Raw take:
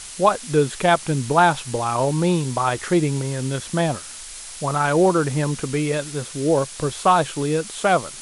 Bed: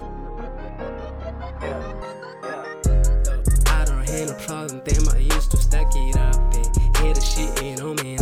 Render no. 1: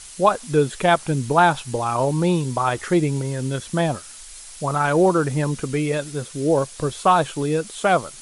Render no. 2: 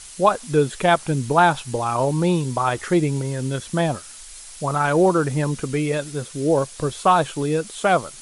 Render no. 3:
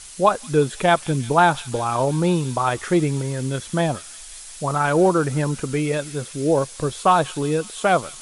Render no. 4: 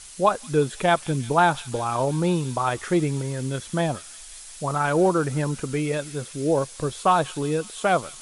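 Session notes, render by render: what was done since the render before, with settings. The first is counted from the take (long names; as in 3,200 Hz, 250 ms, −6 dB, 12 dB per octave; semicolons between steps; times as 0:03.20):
broadband denoise 6 dB, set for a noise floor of −37 dBFS
no processing that can be heard
delay with a high-pass on its return 175 ms, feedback 78%, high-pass 3,700 Hz, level −9 dB
level −3 dB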